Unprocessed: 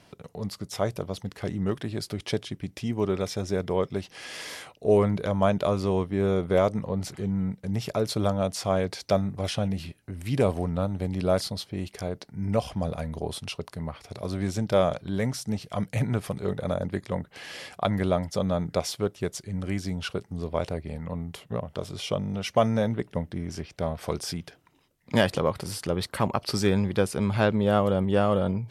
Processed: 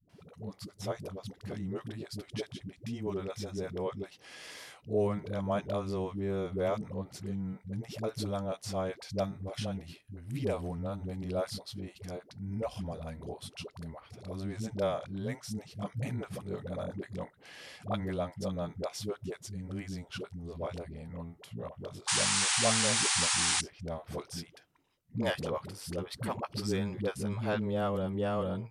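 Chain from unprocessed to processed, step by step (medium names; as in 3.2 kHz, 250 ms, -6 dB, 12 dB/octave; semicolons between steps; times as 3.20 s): painted sound noise, 21.98–23.52 s, 730–10000 Hz -20 dBFS; phase dispersion highs, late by 95 ms, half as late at 340 Hz; trim -9 dB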